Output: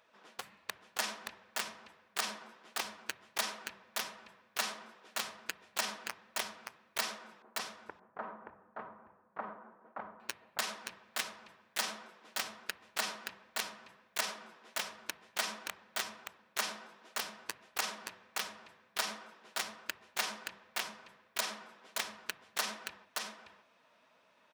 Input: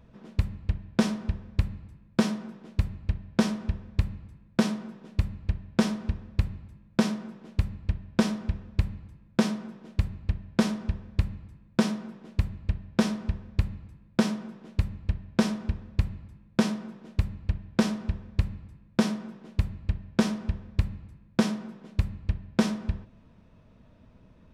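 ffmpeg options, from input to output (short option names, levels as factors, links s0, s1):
-filter_complex "[0:a]aeval=exprs='(mod(5.31*val(0)+1,2)-1)/5.31':c=same,alimiter=limit=0.0708:level=0:latency=1:release=29,highpass=930,flanger=delay=1.3:depth=7.7:regen=-30:speed=1.4:shape=triangular,asettb=1/sr,asplit=3[s0][s1][s2];[s0]atrim=end=7.424[s3];[s1]atrim=start=7.42:end=10.2,asetpts=PTS-STARTPTS,afade=t=in:d=0.004:c=qsin,afade=t=out:st=2.776:d=0.004:c=qsin,lowpass=f=1300:w=0.5412,lowpass=f=1300:w=1.3066[s4];[s2]atrim=start=10.196[s5];[s3][s4]acrossfade=d=0.004:c1=hsin:c2=qsin[s6];[s6][s5]acrossfade=d=0.004:c1=qsin:c2=hsin,aecho=1:1:574:0.631,volume=1.78"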